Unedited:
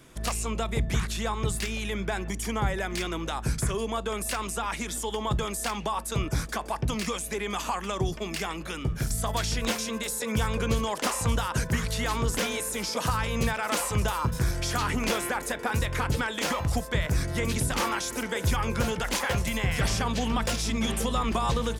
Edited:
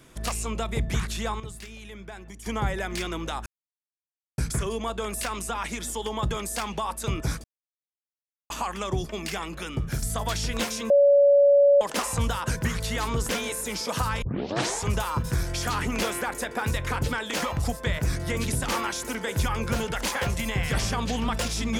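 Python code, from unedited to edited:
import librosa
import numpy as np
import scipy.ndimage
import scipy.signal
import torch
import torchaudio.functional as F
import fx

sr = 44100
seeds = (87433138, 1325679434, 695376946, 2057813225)

y = fx.edit(x, sr, fx.clip_gain(start_s=1.4, length_s=1.06, db=-11.0),
    fx.insert_silence(at_s=3.46, length_s=0.92),
    fx.silence(start_s=6.52, length_s=1.06),
    fx.bleep(start_s=9.98, length_s=0.91, hz=567.0, db=-13.5),
    fx.tape_start(start_s=13.3, length_s=0.66), tone=tone)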